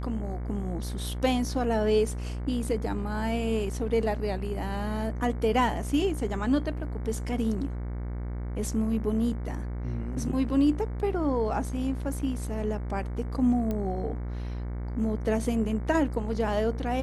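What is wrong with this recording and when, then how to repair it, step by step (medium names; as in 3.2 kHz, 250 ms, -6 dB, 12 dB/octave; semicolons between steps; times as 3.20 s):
buzz 60 Hz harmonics 38 -33 dBFS
13.71 s: pop -19 dBFS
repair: de-click; de-hum 60 Hz, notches 38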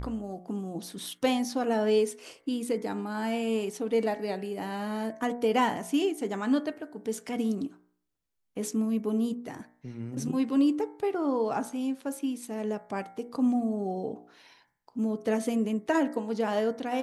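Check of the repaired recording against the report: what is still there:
nothing left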